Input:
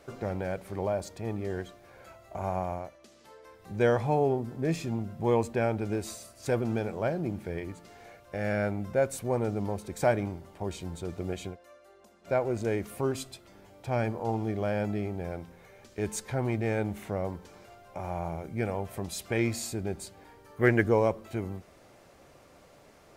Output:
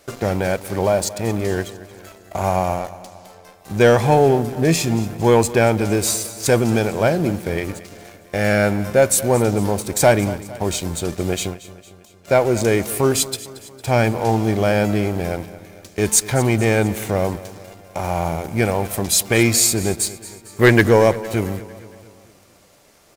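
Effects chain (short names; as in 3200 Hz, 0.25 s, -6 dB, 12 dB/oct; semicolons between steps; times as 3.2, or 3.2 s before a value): high shelf 3300 Hz +12 dB; sample leveller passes 2; on a send: feedback echo 0.228 s, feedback 54%, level -17 dB; on the sum: gain +4.5 dB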